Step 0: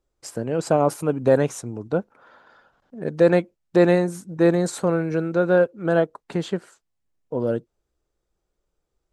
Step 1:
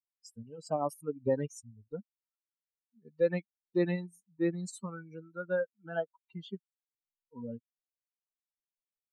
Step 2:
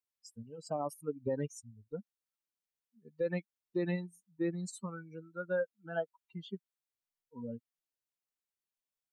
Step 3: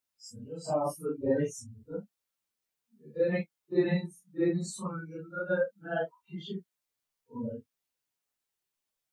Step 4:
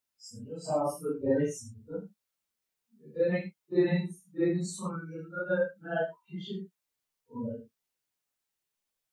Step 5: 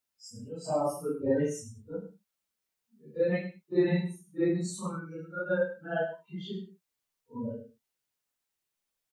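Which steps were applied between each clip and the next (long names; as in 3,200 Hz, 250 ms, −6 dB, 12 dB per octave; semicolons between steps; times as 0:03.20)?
spectral dynamics exaggerated over time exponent 3; level −8 dB
brickwall limiter −23.5 dBFS, peak gain reduction 7 dB; level −1 dB
random phases in long frames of 100 ms; level +6.5 dB
reverb whose tail is shaped and stops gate 90 ms rising, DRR 9 dB
single-tap delay 102 ms −13.5 dB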